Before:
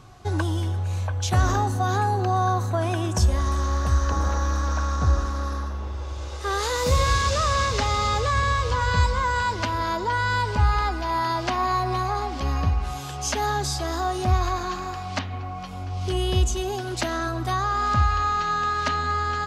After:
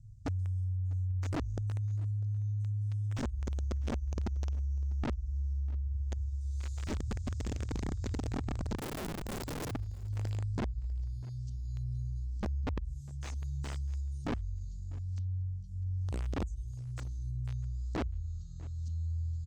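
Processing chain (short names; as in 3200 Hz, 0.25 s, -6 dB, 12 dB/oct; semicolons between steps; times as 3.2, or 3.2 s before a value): elliptic band-stop 110–8200 Hz, stop band 60 dB; compressor 12:1, threshold -31 dBFS, peak gain reduction 16.5 dB; wrapped overs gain 28.5 dB; air absorption 160 m; 8.76–9.71 wrapped overs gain 34 dB; on a send: echo 0.648 s -22 dB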